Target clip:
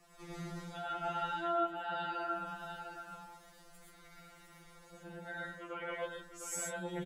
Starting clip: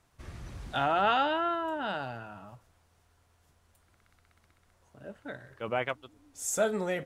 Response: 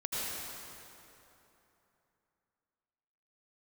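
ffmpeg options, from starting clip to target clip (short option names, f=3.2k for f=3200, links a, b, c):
-filter_complex "[0:a]alimiter=limit=-23.5dB:level=0:latency=1:release=379,areverse,acompressor=threshold=-47dB:ratio=6,areverse,aecho=1:1:705:0.447[a];[1:a]atrim=start_sample=2205,atrim=end_sample=6615[b];[a][b]afir=irnorm=-1:irlink=0,afftfilt=real='re*2.83*eq(mod(b,8),0)':imag='im*2.83*eq(mod(b,8),0)':win_size=2048:overlap=0.75,volume=10dB"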